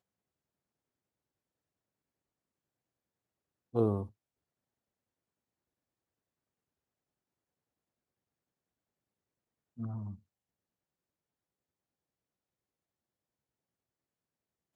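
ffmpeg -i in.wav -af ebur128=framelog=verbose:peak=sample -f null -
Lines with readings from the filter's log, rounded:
Integrated loudness:
  I:         -35.5 LUFS
  Threshold: -46.4 LUFS
Loudness range:
  LRA:         9.5 LU
  Threshold: -62.9 LUFS
  LRA low:   -49.5 LUFS
  LRA high:  -39.9 LUFS
Sample peak:
  Peak:      -16.2 dBFS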